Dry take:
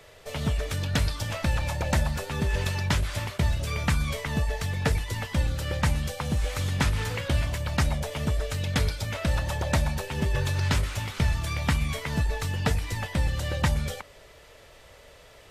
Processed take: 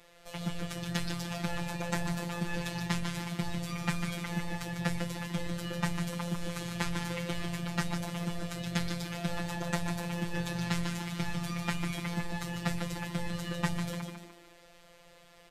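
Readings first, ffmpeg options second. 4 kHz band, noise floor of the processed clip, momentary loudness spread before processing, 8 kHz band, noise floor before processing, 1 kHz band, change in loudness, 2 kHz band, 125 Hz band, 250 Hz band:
-5.5 dB, -57 dBFS, 3 LU, -5.5 dB, -52 dBFS, -5.0 dB, -7.0 dB, -5.5 dB, -9.0 dB, -1.0 dB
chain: -filter_complex "[0:a]asplit=6[a][b][c][d][e][f];[b]adelay=148,afreqshift=50,volume=-6dB[g];[c]adelay=296,afreqshift=100,volume=-13.1dB[h];[d]adelay=444,afreqshift=150,volume=-20.3dB[i];[e]adelay=592,afreqshift=200,volume=-27.4dB[j];[f]adelay=740,afreqshift=250,volume=-34.5dB[k];[a][g][h][i][j][k]amix=inputs=6:normalize=0,afftfilt=real='hypot(re,im)*cos(PI*b)':imag='0':win_size=1024:overlap=0.75,volume=-3.5dB"

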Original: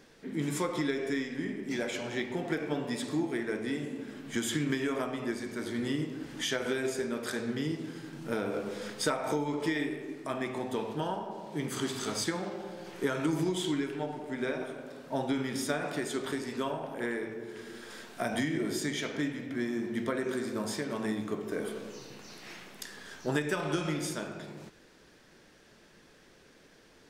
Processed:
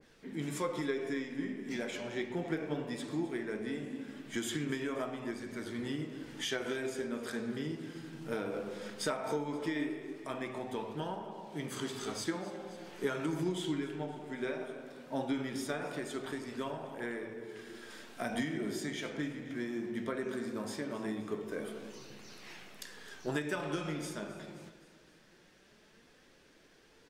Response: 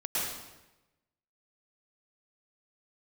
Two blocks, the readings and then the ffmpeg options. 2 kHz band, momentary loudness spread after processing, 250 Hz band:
-4.5 dB, 10 LU, -4.5 dB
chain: -af "equalizer=f=2.8k:t=o:w=0.77:g=2,flanger=delay=0.4:depth=6.2:regen=73:speed=0.18:shape=triangular,aecho=1:1:262|524|786|1048:0.141|0.0692|0.0339|0.0166,adynamicequalizer=threshold=0.00355:dfrequency=1800:dqfactor=0.7:tfrequency=1800:tqfactor=0.7:attack=5:release=100:ratio=0.375:range=2:mode=cutabove:tftype=highshelf"

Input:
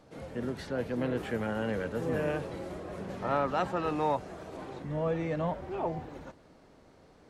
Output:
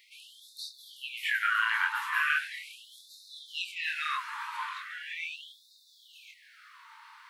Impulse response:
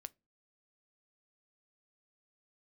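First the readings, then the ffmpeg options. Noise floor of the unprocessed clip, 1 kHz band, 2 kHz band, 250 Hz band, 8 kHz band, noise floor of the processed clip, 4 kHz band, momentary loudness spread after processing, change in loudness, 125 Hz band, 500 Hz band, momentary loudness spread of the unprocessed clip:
-59 dBFS, -1.0 dB, +12.5 dB, under -40 dB, n/a, -61 dBFS, +12.0 dB, 22 LU, +2.0 dB, under -40 dB, under -40 dB, 11 LU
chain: -filter_complex "[0:a]flanger=delay=18.5:depth=7.8:speed=0.89,highpass=f=46:p=1,aemphasis=mode=production:type=50kf,asplit=2[a][b];[1:a]atrim=start_sample=2205,lowpass=3.2k[c];[b][c]afir=irnorm=-1:irlink=0,volume=17dB[d];[a][d]amix=inputs=2:normalize=0,afftfilt=real='re*gte(b*sr/1024,830*pow(3600/830,0.5+0.5*sin(2*PI*0.39*pts/sr)))':imag='im*gte(b*sr/1024,830*pow(3600/830,0.5+0.5*sin(2*PI*0.39*pts/sr)))':win_size=1024:overlap=0.75,volume=4.5dB"

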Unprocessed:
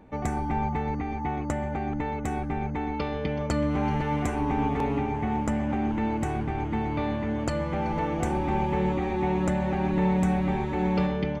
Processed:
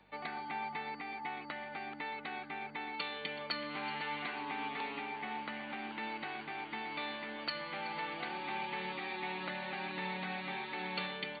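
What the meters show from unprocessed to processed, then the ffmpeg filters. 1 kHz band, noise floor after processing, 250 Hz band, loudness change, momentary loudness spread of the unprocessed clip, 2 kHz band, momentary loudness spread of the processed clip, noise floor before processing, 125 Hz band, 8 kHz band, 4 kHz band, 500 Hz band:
-10.0 dB, -48 dBFS, -20.0 dB, -12.0 dB, 5 LU, -1.5 dB, 4 LU, -31 dBFS, -25.5 dB, under -35 dB, +3.5 dB, -16.0 dB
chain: -filter_complex "[0:a]afftfilt=real='re*between(b*sr/4096,140,4600)':imag='im*between(b*sr/4096,140,4600)':win_size=4096:overlap=0.75,aeval=exprs='val(0)+0.00794*(sin(2*PI*50*n/s)+sin(2*PI*2*50*n/s)/2+sin(2*PI*3*50*n/s)/3+sin(2*PI*4*50*n/s)/4+sin(2*PI*5*50*n/s)/5)':c=same,acrossover=split=330|890|1500[a][b][c][d];[b]alimiter=level_in=5.5dB:limit=-24dB:level=0:latency=1:release=446,volume=-5.5dB[e];[a][e][c][d]amix=inputs=4:normalize=0,aderivative,volume=10dB"

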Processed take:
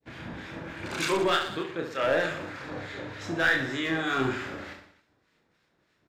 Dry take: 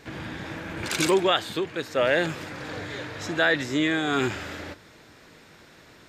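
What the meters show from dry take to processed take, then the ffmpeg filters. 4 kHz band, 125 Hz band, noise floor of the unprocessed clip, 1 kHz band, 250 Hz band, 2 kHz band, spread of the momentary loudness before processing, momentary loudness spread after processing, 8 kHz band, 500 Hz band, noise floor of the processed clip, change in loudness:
-4.5 dB, -3.5 dB, -52 dBFS, -1.5 dB, -4.5 dB, -1.5 dB, 14 LU, 15 LU, -7.0 dB, -4.0 dB, -72 dBFS, -3.0 dB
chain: -filter_complex "[0:a]acontrast=30,highshelf=f=6.2k:g=-8.5,agate=range=-33dB:threshold=-36dB:ratio=3:detection=peak,adynamicequalizer=threshold=0.0282:dfrequency=1300:dqfactor=1.2:tfrequency=1300:tqfactor=1.2:attack=5:release=100:ratio=0.375:range=2.5:mode=boostabove:tftype=bell,acrossover=split=1200[a][b];[a]aeval=exprs='val(0)*(1-0.7/2+0.7/2*cos(2*PI*3.3*n/s))':c=same[c];[b]aeval=exprs='val(0)*(1-0.7/2-0.7/2*cos(2*PI*3.3*n/s))':c=same[d];[c][d]amix=inputs=2:normalize=0,aeval=exprs='clip(val(0),-1,0.2)':c=same,asplit=2[e][f];[f]aecho=0:1:30|69|119.7|185.6|271.3:0.631|0.398|0.251|0.158|0.1[g];[e][g]amix=inputs=2:normalize=0,volume=-7.5dB"

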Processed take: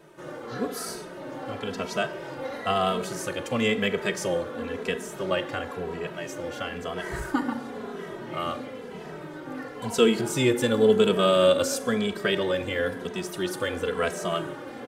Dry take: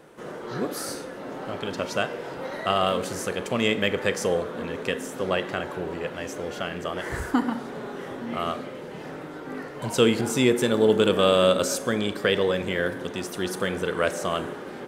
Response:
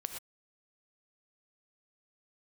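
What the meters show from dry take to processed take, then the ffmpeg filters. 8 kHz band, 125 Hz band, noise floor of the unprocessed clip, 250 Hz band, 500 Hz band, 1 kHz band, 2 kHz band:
-1.5 dB, -1.5 dB, -38 dBFS, -1.5 dB, -1.0 dB, -1.5 dB, -1.5 dB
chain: -filter_complex "[0:a]asplit=2[a][b];[b]adelay=2.7,afreqshift=-0.98[c];[a][c]amix=inputs=2:normalize=1,volume=1.5dB"

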